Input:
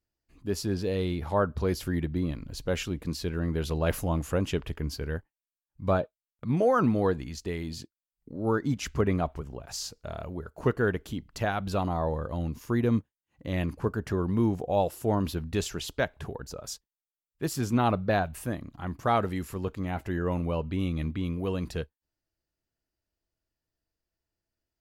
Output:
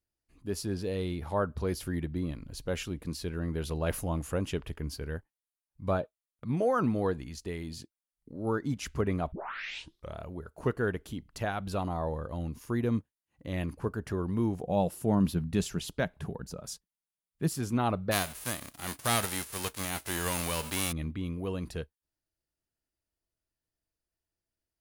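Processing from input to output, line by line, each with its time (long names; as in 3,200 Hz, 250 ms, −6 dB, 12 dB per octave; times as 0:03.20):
0:09.32: tape start 0.84 s
0:14.63–0:17.55: parametric band 180 Hz +11 dB
0:18.11–0:20.91: spectral envelope flattened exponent 0.3
whole clip: parametric band 9,800 Hz +8 dB 0.29 octaves; level −4 dB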